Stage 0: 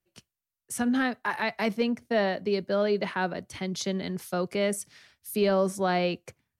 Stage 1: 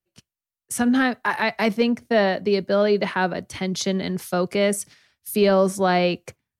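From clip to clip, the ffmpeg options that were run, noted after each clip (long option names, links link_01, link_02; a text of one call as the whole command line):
ffmpeg -i in.wav -af "agate=range=-10dB:threshold=-48dB:ratio=16:detection=peak,volume=6.5dB" out.wav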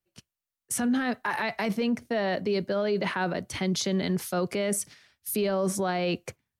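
ffmpeg -i in.wav -af "alimiter=limit=-19.5dB:level=0:latency=1:release=25" out.wav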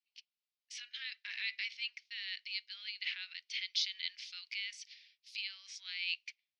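ffmpeg -i in.wav -af "asuperpass=centerf=3400:order=8:qfactor=1.1" out.wav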